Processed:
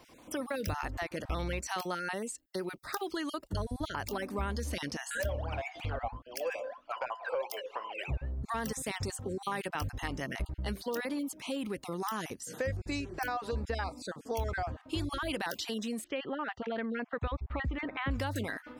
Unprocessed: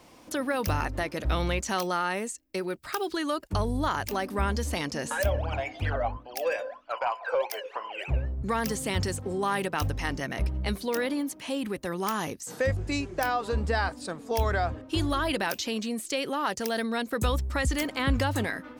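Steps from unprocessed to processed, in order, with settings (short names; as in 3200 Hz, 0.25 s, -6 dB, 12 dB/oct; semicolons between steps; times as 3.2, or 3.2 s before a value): random spectral dropouts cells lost 21%; 16.04–18.11 LPF 2800 Hz 24 dB/oct; compressor 2:1, threshold -31 dBFS, peak gain reduction 6.5 dB; gain -2.5 dB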